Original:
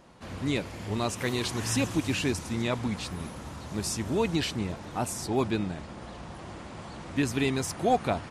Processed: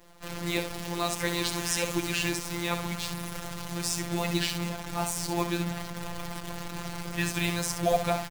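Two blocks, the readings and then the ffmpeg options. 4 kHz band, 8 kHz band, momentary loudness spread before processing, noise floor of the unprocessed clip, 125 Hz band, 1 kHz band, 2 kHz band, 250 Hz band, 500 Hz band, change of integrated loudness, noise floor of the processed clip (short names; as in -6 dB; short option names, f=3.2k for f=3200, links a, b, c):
+3.0 dB, +3.0 dB, 15 LU, -43 dBFS, -1.5 dB, 0.0 dB, +2.5 dB, -3.0 dB, -1.0 dB, -0.5 dB, -39 dBFS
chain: -filter_complex "[0:a]asubboost=boost=10:cutoff=100,acrossover=split=240|3000[a][b][c];[a]acompressor=threshold=-35dB:ratio=12[d];[d][b][c]amix=inputs=3:normalize=0,aecho=1:1:15|66:0.2|0.376,acrusher=bits=7:dc=4:mix=0:aa=0.000001,afftfilt=real='hypot(re,im)*cos(PI*b)':imag='0':win_size=1024:overlap=0.75,volume=5dB"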